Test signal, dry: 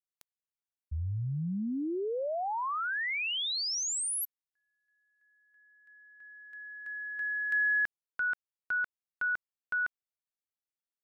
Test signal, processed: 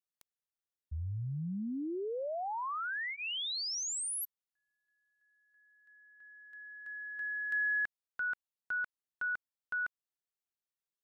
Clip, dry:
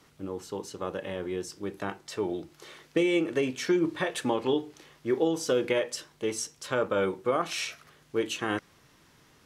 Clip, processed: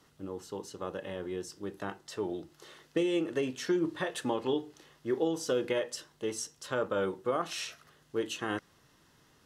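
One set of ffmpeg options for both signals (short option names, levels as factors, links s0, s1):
-af "bandreject=f=2300:w=7.6,volume=0.631"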